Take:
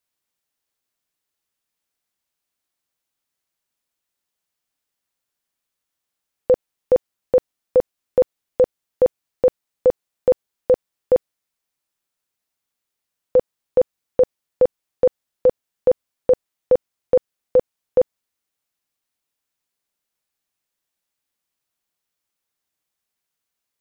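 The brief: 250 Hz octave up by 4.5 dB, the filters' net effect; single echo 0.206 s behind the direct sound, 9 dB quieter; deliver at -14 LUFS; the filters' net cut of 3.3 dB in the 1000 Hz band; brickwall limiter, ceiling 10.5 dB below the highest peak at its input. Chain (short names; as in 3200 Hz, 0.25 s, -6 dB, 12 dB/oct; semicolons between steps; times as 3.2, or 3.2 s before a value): bell 250 Hz +6.5 dB; bell 1000 Hz -5.5 dB; limiter -17 dBFS; echo 0.206 s -9 dB; gain +16.5 dB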